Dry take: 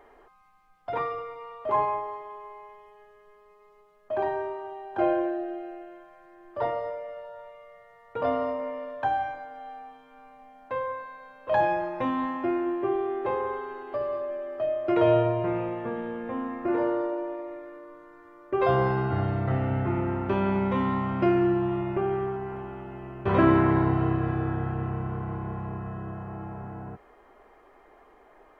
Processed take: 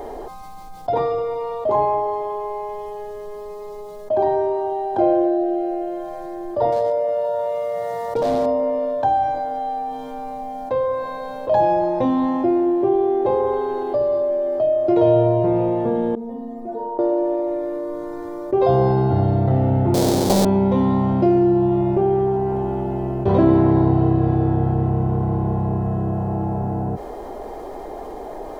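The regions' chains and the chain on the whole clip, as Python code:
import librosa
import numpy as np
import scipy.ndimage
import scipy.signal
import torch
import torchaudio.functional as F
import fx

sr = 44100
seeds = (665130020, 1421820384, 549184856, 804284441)

y = fx.chain(x, sr, fx.highpass(hz=95.0, slope=12),
    fx.clip_hard(threshold_db=-27.5),
    fx.env_flatten(amount_pct=50), at=(6.72, 8.46))
y = fx.chain(y, sr, fx.peak_eq(hz=2000.0, db=-7.0, octaves=2.0),
    fx.stiff_resonator(f0_hz=220.0, decay_s=0.5, stiffness=0.008), at=(16.15, 16.99))
y = fx.chain(y, sr, fx.halfwave_hold(),
    fx.highpass(hz=150.0, slope=12),
    fx.doppler_dist(depth_ms=0.89), at=(19.94, 20.45))
y = fx.band_shelf(y, sr, hz=1800.0, db=-14.0, octaves=1.7)
y = fx.env_flatten(y, sr, amount_pct=50)
y = y * librosa.db_to_amplitude(5.0)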